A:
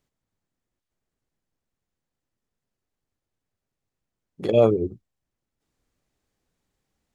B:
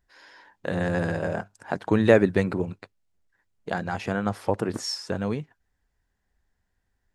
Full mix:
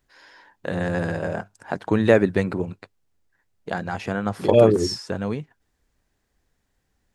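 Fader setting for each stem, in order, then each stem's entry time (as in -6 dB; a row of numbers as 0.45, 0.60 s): +2.5, +1.0 dB; 0.00, 0.00 s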